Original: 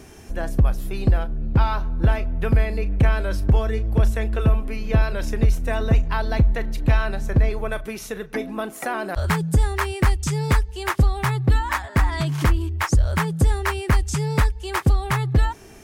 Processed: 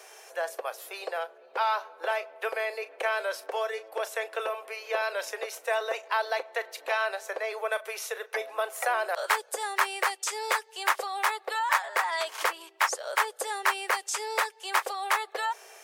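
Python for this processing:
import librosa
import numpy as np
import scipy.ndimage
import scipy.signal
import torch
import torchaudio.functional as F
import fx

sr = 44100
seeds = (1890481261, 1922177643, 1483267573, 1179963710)

y = scipy.signal.sosfilt(scipy.signal.butter(8, 470.0, 'highpass', fs=sr, output='sos'), x)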